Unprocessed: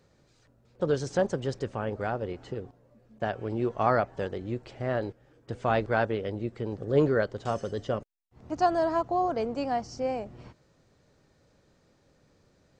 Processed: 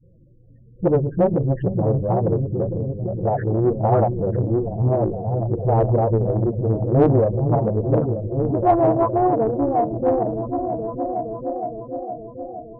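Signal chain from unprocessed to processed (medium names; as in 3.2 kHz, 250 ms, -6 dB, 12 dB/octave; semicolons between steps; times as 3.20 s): delay that grows with frequency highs late, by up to 502 ms; low-pass that closes with the level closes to 710 Hz, closed at -25 dBFS; Bessel low-pass 1.7 kHz, order 2; bass shelf 150 Hz +10.5 dB; hum notches 50/100/150/200/250 Hz; on a send: delay with an opening low-pass 465 ms, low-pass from 200 Hz, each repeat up 1 oct, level -3 dB; on the sum: loudest bins only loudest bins 16; in parallel at -7.5 dB: saturation -24.5 dBFS, distortion -13 dB; on the sum: dynamic bell 1.1 kHz, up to +6 dB, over -45 dBFS, Q 1.2; loudspeaker Doppler distortion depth 0.56 ms; trim +6.5 dB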